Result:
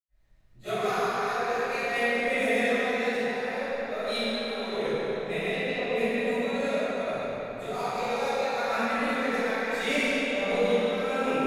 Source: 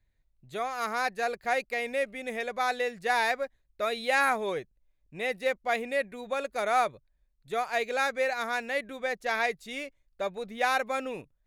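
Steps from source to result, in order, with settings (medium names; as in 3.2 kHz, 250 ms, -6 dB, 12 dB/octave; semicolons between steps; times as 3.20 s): chunks repeated in reverse 108 ms, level -1 dB; 5.37–5.85 s: low-pass 4.5 kHz; 7.61–8.34 s: peaking EQ 1.7 kHz -12 dB 0.41 oct; compressor with a negative ratio -33 dBFS, ratio -0.5; crackle 450 per s -61 dBFS; reverberation RT60 4.2 s, pre-delay 80 ms; tape noise reduction on one side only decoder only; trim +7 dB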